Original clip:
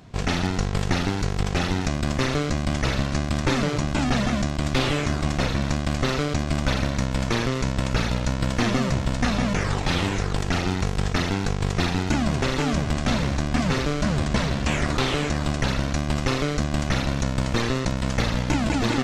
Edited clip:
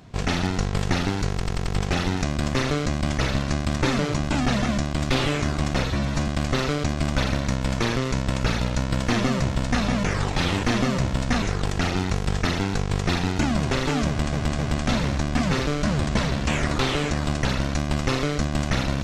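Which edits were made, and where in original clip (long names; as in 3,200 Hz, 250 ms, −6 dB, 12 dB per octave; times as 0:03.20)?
0:01.31: stutter 0.09 s, 5 plays
0:05.50–0:05.78: time-stretch 1.5×
0:08.55–0:09.34: duplicate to 0:10.13
0:12.78–0:13.04: repeat, 3 plays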